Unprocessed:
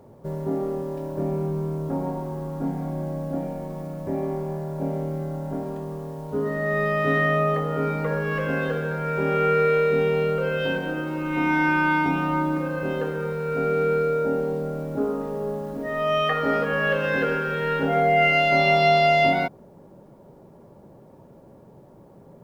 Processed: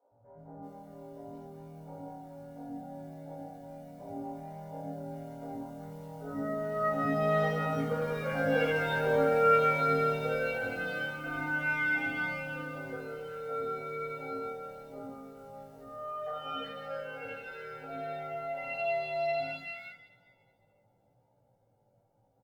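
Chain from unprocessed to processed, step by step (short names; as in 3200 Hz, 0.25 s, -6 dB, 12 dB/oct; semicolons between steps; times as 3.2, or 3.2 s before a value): Doppler pass-by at 8.71, 7 m/s, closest 9.8 m; low shelf 330 Hz -4 dB; comb 1.4 ms, depth 54%; reverb, pre-delay 3 ms, DRR -6 dB; chorus 0.75 Hz, delay 17 ms, depth 2.1 ms; three bands offset in time mids, lows, highs 0.11/0.38 s, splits 330/1500 Hz; gain -3.5 dB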